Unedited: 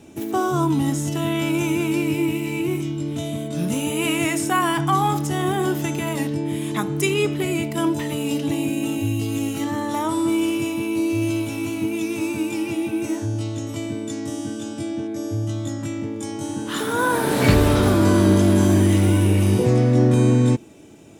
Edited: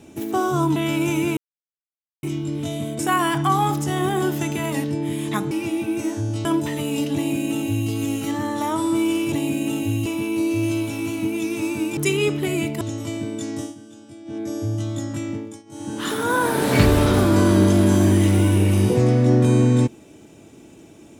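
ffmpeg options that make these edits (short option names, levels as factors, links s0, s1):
-filter_complex "[0:a]asplit=15[s0][s1][s2][s3][s4][s5][s6][s7][s8][s9][s10][s11][s12][s13][s14];[s0]atrim=end=0.762[s15];[s1]atrim=start=1.288:end=1.9,asetpts=PTS-STARTPTS,afade=t=out:st=0.608:d=0.004:c=hsin[s16];[s2]atrim=start=1.9:end=2.76,asetpts=PTS-STARTPTS,volume=0[s17];[s3]atrim=start=2.76:end=3.522,asetpts=PTS-STARTPTS,afade=t=in:d=0.004:c=hsin[s18];[s4]atrim=start=4.418:end=6.942[s19];[s5]atrim=start=12.558:end=13.502[s20];[s6]atrim=start=7.778:end=10.652[s21];[s7]atrim=start=8.478:end=9.222[s22];[s8]atrim=start=10.648:end=12.562[s23];[s9]atrim=start=6.938:end=7.782[s24];[s10]atrim=start=13.498:end=14.44,asetpts=PTS-STARTPTS,afade=t=out:st=0.802:d=0.14:silence=0.211349[s25];[s11]atrim=start=14.44:end=14.94,asetpts=PTS-STARTPTS,volume=0.211[s26];[s12]atrim=start=14.94:end=16.32,asetpts=PTS-STARTPTS,afade=t=in:d=0.14:silence=0.211349,afade=t=out:st=1.08:d=0.3:silence=0.0944061[s27];[s13]atrim=start=16.32:end=16.35,asetpts=PTS-STARTPTS,volume=0.0944[s28];[s14]atrim=start=16.35,asetpts=PTS-STARTPTS,afade=t=in:d=0.3:silence=0.0944061[s29];[s16][s17][s18]concat=n=3:v=0:a=1[s30];[s15][s30]acrossfade=d=0.004:c1=hsin:c2=hsin[s31];[s31][s19]acrossfade=d=0.004:c1=hsin:c2=hsin[s32];[s32][s20]acrossfade=d=0.004:c1=hsin:c2=hsin[s33];[s33][s21]acrossfade=d=0.004:c1=hsin:c2=hsin[s34];[s34][s22]acrossfade=d=0.004:c1=hsin:c2=hsin[s35];[s35][s23]acrossfade=d=0.004:c1=hsin:c2=hsin[s36];[s36][s24]acrossfade=d=0.004:c1=hsin:c2=hsin[s37];[s25][s26][s27][s28][s29]concat=n=5:v=0:a=1[s38];[s37][s38]acrossfade=d=0.004:c1=hsin:c2=hsin"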